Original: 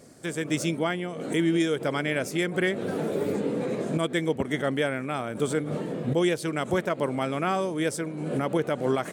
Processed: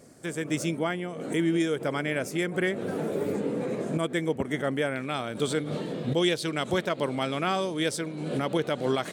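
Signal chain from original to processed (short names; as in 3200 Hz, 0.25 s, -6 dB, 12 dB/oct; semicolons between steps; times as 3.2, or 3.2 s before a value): bell 3900 Hz -2.5 dB 0.89 oct, from 4.96 s +10.5 dB; gain -1.5 dB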